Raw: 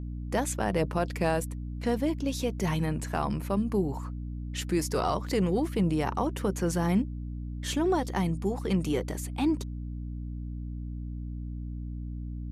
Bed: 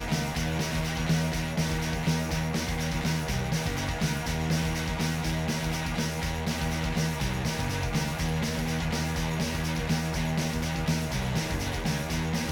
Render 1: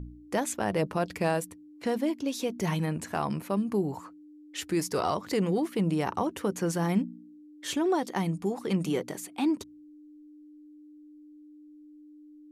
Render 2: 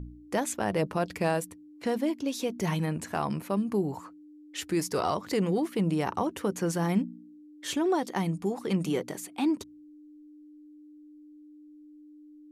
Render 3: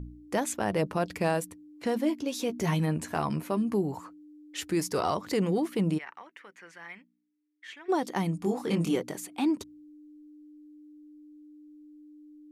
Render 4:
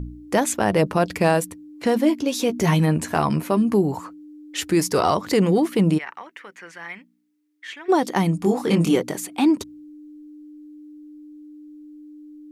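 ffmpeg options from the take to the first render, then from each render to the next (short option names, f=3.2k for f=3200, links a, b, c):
-af "bandreject=f=60:t=h:w=4,bandreject=f=120:t=h:w=4,bandreject=f=180:t=h:w=4,bandreject=f=240:t=h:w=4"
-af anull
-filter_complex "[0:a]asettb=1/sr,asplit=3[a][b][c];[a]atrim=end=1.954[d];[b]atrim=start=1.95:end=3.75,asetpts=PTS-STARTPTS,afade=t=in:d=0.004:c=qsin,afade=t=out:st=1.796:d=0.004:c=qsin,asplit=2[e][f];[f]adelay=13,volume=-9dB[g];[e][g]amix=inputs=2:normalize=0,atrim=end_sample=79380[h];[c]atrim=start=3.746[i];[d][h]acrossfade=d=0.004:c1=hsin:c2=qsin[j];[j][i]acrossfade=d=0.004:c1=qsin:c2=hsin,asplit=3[k][l][m];[k]afade=t=out:st=5.97:d=0.02[n];[l]bandpass=f=2k:t=q:w=3.7,afade=t=in:st=5.97:d=0.02,afade=t=out:st=7.88:d=0.02[o];[m]afade=t=in:st=7.88:d=0.02[p];[n][o][p]amix=inputs=3:normalize=0,asettb=1/sr,asplit=3[q][r][s];[q]atrim=end=8.404[t];[r]atrim=start=8.4:end=8.96,asetpts=PTS-STARTPTS,afade=t=in:d=0.004:c=qsin,afade=t=out:st=0.556:d=0.004:c=qsin,asplit=2[u][v];[v]adelay=24,volume=-3dB[w];[u][w]amix=inputs=2:normalize=0,atrim=end_sample=24696[x];[s]atrim=start=8.956[y];[t][x]acrossfade=d=0.004:c1=hsin:c2=qsin[z];[z][y]acrossfade=d=0.004:c1=qsin:c2=hsin"
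-af "volume=9dB"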